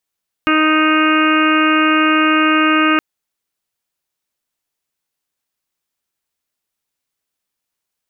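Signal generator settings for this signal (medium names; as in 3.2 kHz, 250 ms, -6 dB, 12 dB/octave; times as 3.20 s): steady additive tone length 2.52 s, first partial 311 Hz, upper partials -10.5/-17/-1.5/-5/-13/-9.5/-8/-8 dB, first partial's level -14 dB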